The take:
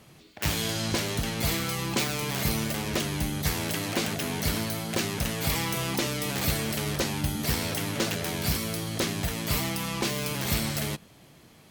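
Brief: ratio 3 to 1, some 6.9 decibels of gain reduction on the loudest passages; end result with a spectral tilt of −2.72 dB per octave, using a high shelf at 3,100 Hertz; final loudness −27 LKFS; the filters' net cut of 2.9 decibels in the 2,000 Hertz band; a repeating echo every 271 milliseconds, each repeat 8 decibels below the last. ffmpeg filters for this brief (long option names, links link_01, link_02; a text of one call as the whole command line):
ffmpeg -i in.wav -af "equalizer=frequency=2000:width_type=o:gain=-6.5,highshelf=frequency=3100:gain=7,acompressor=threshold=-29dB:ratio=3,aecho=1:1:271|542|813|1084|1355:0.398|0.159|0.0637|0.0255|0.0102,volume=3dB" out.wav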